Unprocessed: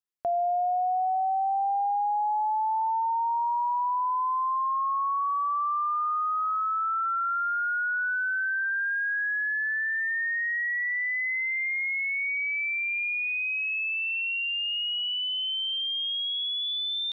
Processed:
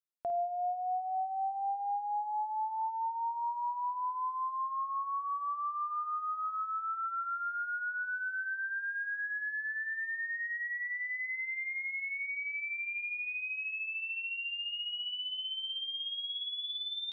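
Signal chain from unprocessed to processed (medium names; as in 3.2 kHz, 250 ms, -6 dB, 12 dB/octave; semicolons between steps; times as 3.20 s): reverb removal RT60 0.53 s; flutter echo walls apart 9.1 m, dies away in 0.35 s; trim -7 dB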